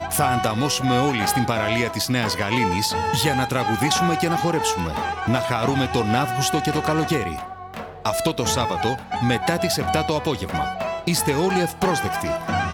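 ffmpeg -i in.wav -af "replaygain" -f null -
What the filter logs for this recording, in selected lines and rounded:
track_gain = +3.8 dB
track_peak = 0.422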